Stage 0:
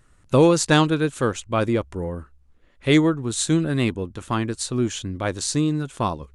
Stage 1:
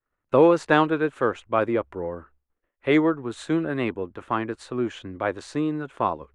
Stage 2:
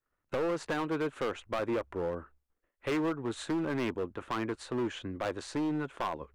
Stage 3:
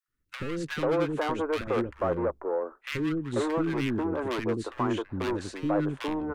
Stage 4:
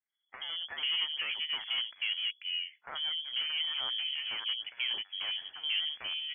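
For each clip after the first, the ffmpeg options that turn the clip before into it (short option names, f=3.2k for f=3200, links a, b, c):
-filter_complex "[0:a]agate=range=-33dB:threshold=-44dB:ratio=3:detection=peak,acrossover=split=310 2500:gain=0.224 1 0.0708[a][b][c];[a][b][c]amix=inputs=3:normalize=0,volume=1.5dB"
-af "acompressor=threshold=-21dB:ratio=8,asoftclip=type=hard:threshold=-25.5dB,volume=-2dB"
-filter_complex "[0:a]asplit=2[a][b];[b]adynamicsmooth=sensitivity=7.5:basefreq=1.3k,volume=0.5dB[c];[a][c]amix=inputs=2:normalize=0,acrossover=split=340|1500[d][e][f];[d]adelay=80[g];[e]adelay=490[h];[g][h][f]amix=inputs=3:normalize=0,volume=1dB"
-af "lowpass=f=2.9k:t=q:w=0.5098,lowpass=f=2.9k:t=q:w=0.6013,lowpass=f=2.9k:t=q:w=0.9,lowpass=f=2.9k:t=q:w=2.563,afreqshift=-3400,volume=-6.5dB"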